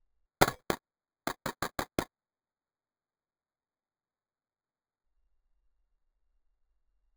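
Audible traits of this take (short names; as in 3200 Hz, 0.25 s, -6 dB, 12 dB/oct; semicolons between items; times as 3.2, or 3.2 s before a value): aliases and images of a low sample rate 2800 Hz, jitter 0%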